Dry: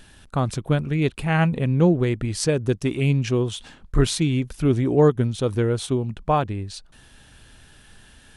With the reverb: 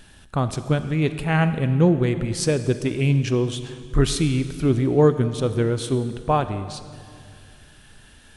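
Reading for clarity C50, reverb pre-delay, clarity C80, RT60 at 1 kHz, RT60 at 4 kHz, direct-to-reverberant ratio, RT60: 11.5 dB, 31 ms, 12.5 dB, 2.1 s, 2.0 s, 11.0 dB, 2.3 s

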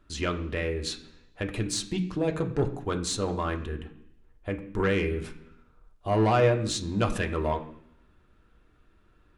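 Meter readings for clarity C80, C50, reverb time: 14.5 dB, 12.0 dB, 0.70 s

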